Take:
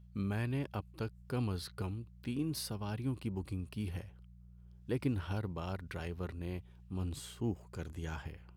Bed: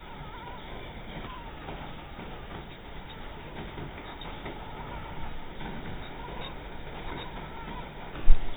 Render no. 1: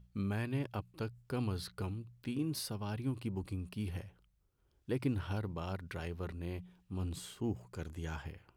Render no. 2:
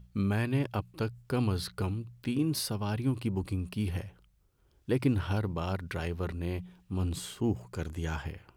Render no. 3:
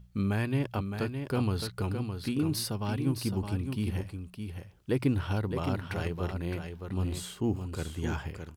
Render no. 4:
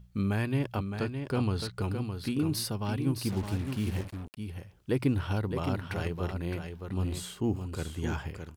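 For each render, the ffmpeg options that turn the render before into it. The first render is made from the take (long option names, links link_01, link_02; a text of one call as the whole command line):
ffmpeg -i in.wav -af "bandreject=frequency=60:width_type=h:width=4,bandreject=frequency=120:width_type=h:width=4,bandreject=frequency=180:width_type=h:width=4" out.wav
ffmpeg -i in.wav -af "volume=7dB" out.wav
ffmpeg -i in.wav -af "aecho=1:1:614:0.447" out.wav
ffmpeg -i in.wav -filter_complex "[0:a]asettb=1/sr,asplit=3[link_01][link_02][link_03];[link_01]atrim=end=0.834[link_04];[link_02]atrim=start=0.83:end=1.81,asetpts=PTS-STARTPTS,afade=type=in:duration=0.004:curve=qsin,afade=type=out:start_time=0.976:duration=0.004:curve=qsin,equalizer=frequency=13000:width_type=o:width=0.38:gain=-11[link_05];[link_03]atrim=start=1.806[link_06];[link_04][link_05]acrossfade=duration=0.004:curve1=hsin:curve2=qsin[link_07];[link_07][link_06]acrossfade=duration=0.004:curve1=qsin:curve2=hsin,asettb=1/sr,asplit=3[link_08][link_09][link_10];[link_08]atrim=end=3.244[link_11];[link_09]atrim=start=3.24:end=4.37,asetpts=PTS-STARTPTS,afade=type=in:duration=0.004:curve=qsin,afade=type=out:start_time=1.126:duration=0.004:curve=qsin,acrusher=bits=6:mix=0:aa=0.5[link_12];[link_10]atrim=start=4.366[link_13];[link_11][link_12]acrossfade=duration=0.004:curve1=hsin:curve2=qsin[link_14];[link_14][link_13]acrossfade=duration=0.004:curve1=qsin:curve2=hsin" out.wav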